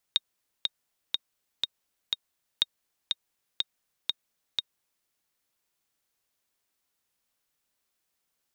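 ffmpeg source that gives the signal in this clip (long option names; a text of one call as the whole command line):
ffmpeg -f lavfi -i "aevalsrc='pow(10,(-9-4*gte(mod(t,5*60/122),60/122))/20)*sin(2*PI*3720*mod(t,60/122))*exp(-6.91*mod(t,60/122)/0.03)':duration=4.91:sample_rate=44100" out.wav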